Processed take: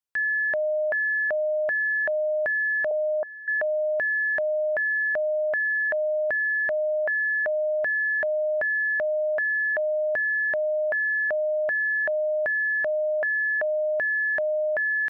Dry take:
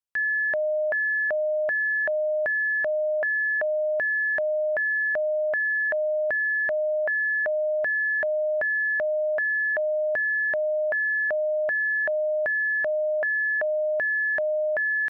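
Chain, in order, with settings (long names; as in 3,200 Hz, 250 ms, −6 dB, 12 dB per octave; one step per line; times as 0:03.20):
0:02.91–0:03.48: low-pass filter 1,100 Hz 24 dB per octave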